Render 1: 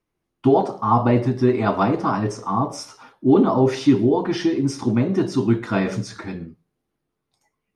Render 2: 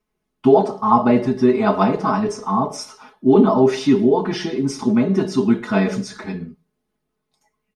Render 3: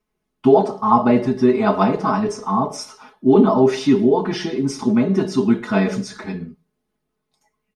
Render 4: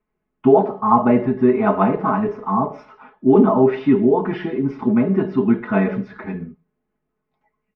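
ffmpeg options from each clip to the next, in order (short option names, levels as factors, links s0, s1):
-af "aecho=1:1:4.7:0.81"
-af anull
-af "lowpass=f=2400:w=0.5412,lowpass=f=2400:w=1.3066"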